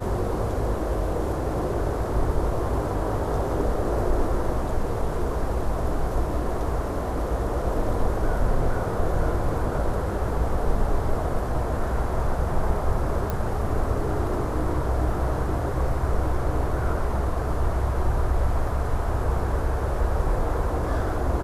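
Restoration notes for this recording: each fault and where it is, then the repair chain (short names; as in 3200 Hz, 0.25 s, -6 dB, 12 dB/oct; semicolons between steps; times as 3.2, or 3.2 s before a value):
13.3 pop -14 dBFS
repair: de-click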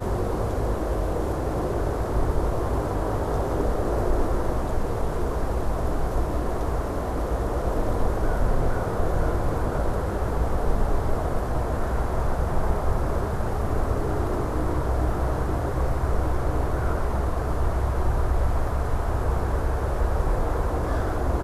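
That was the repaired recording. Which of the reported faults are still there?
none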